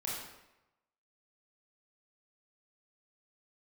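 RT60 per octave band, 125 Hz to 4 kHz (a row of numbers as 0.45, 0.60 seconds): 0.95, 0.85, 0.95, 0.95, 0.85, 0.70 seconds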